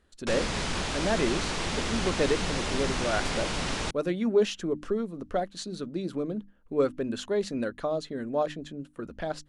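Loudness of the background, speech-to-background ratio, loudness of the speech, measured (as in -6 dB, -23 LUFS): -30.5 LUFS, -0.5 dB, -31.0 LUFS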